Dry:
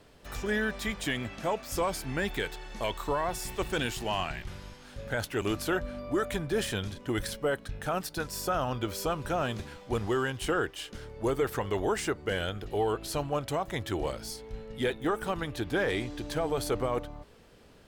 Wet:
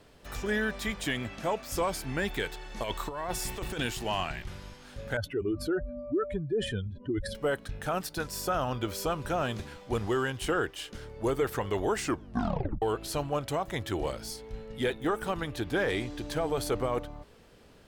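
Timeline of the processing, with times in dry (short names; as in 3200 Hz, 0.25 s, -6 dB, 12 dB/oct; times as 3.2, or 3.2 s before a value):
2.77–3.81 negative-ratio compressor -32 dBFS, ratio -0.5
5.17–7.35 spectral contrast raised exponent 2.2
11.98 tape stop 0.84 s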